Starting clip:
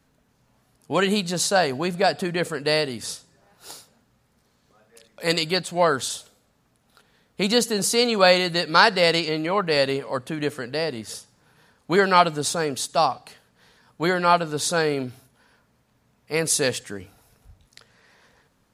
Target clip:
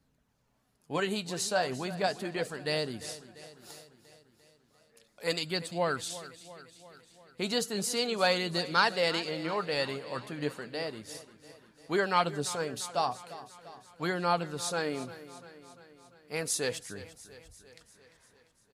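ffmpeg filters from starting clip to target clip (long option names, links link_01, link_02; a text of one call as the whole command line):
ffmpeg -i in.wav -filter_complex "[0:a]flanger=delay=0.2:depth=8.5:regen=57:speed=0.35:shape=sinusoidal,asplit=2[link_01][link_02];[link_02]aecho=0:1:346|692|1038|1384|1730|2076:0.158|0.0951|0.0571|0.0342|0.0205|0.0123[link_03];[link_01][link_03]amix=inputs=2:normalize=0,volume=-5.5dB" out.wav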